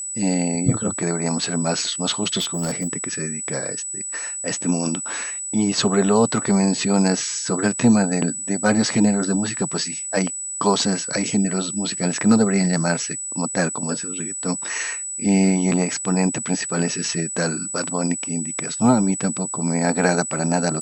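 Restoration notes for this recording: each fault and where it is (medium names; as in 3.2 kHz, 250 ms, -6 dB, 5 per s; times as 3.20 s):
whine 7.9 kHz -27 dBFS
2.39–2.88 s: clipped -19 dBFS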